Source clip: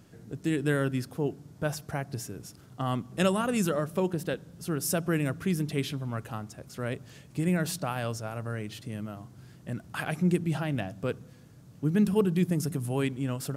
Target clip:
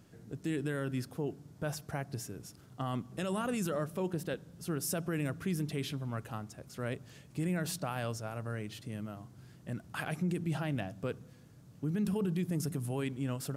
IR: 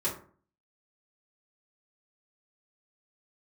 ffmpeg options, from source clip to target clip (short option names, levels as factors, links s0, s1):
-af "alimiter=limit=0.0841:level=0:latency=1:release=20,volume=0.631"